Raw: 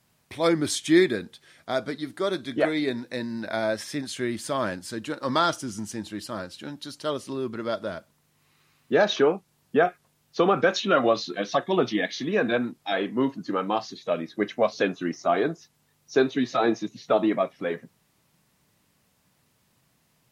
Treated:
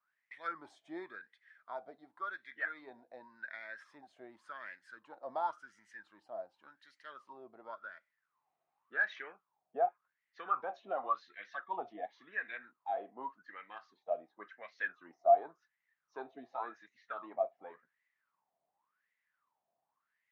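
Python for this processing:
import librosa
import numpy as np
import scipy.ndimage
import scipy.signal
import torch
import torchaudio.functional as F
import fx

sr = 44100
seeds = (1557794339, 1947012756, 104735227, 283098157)

y = fx.wah_lfo(x, sr, hz=0.9, low_hz=680.0, high_hz=2000.0, q=13.0)
y = F.gain(torch.from_numpy(y), 1.0).numpy()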